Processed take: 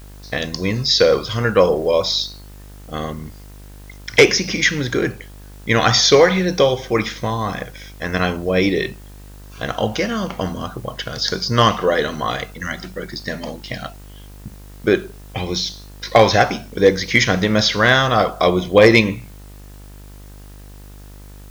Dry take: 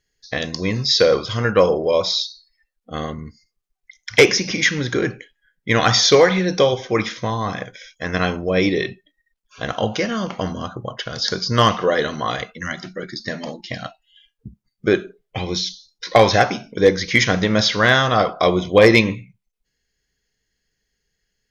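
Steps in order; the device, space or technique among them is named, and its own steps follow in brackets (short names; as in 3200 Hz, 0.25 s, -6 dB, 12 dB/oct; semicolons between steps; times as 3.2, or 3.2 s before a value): video cassette with head-switching buzz (buzz 50 Hz, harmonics 39, -40 dBFS -7 dB/oct; white noise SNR 31 dB); gain +1 dB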